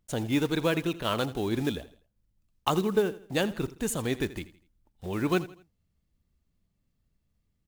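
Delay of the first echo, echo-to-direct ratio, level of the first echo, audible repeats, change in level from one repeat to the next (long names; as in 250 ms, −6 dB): 82 ms, −16.5 dB, −17.0 dB, 3, −8.5 dB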